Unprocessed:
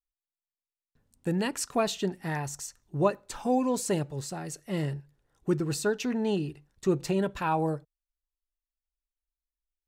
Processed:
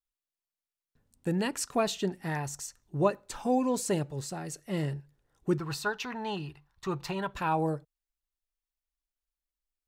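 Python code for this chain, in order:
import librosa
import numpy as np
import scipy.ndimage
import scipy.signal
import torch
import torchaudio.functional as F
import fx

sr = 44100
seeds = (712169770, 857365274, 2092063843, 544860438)

y = fx.graphic_eq(x, sr, hz=(250, 500, 1000, 4000, 8000), db=(-10, -8, 11, 3, -8), at=(5.58, 7.34))
y = y * librosa.db_to_amplitude(-1.0)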